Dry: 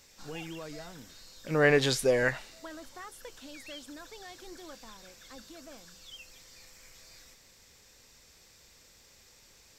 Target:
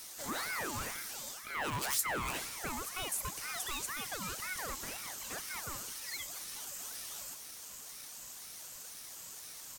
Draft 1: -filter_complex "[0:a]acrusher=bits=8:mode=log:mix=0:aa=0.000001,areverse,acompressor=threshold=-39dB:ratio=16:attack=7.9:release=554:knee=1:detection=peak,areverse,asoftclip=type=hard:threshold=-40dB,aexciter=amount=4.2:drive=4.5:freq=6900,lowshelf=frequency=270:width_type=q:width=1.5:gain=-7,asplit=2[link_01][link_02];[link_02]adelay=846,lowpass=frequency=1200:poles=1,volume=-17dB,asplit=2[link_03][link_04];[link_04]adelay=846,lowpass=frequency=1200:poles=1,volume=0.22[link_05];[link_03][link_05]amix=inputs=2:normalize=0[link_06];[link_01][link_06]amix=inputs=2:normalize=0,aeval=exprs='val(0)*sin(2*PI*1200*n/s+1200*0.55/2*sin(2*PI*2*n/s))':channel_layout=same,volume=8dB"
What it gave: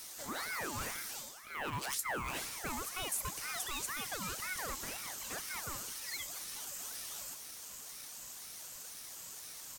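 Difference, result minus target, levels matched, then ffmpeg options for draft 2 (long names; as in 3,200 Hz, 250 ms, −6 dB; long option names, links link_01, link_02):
downward compressor: peak gain reduction +6.5 dB
-filter_complex "[0:a]acrusher=bits=8:mode=log:mix=0:aa=0.000001,areverse,acompressor=threshold=-32dB:ratio=16:attack=7.9:release=554:knee=1:detection=peak,areverse,asoftclip=type=hard:threshold=-40dB,aexciter=amount=4.2:drive=4.5:freq=6900,lowshelf=frequency=270:width_type=q:width=1.5:gain=-7,asplit=2[link_01][link_02];[link_02]adelay=846,lowpass=frequency=1200:poles=1,volume=-17dB,asplit=2[link_03][link_04];[link_04]adelay=846,lowpass=frequency=1200:poles=1,volume=0.22[link_05];[link_03][link_05]amix=inputs=2:normalize=0[link_06];[link_01][link_06]amix=inputs=2:normalize=0,aeval=exprs='val(0)*sin(2*PI*1200*n/s+1200*0.55/2*sin(2*PI*2*n/s))':channel_layout=same,volume=8dB"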